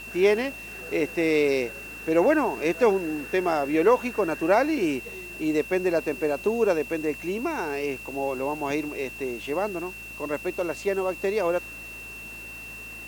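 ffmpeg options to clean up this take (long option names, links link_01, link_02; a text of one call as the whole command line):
ffmpeg -i in.wav -af "adeclick=threshold=4,bandreject=frequency=55.3:width_type=h:width=4,bandreject=frequency=110.6:width_type=h:width=4,bandreject=frequency=165.9:width_type=h:width=4,bandreject=frequency=221.2:width_type=h:width=4,bandreject=frequency=276.5:width_type=h:width=4,bandreject=frequency=2700:width=30,afwtdn=0.0032" out.wav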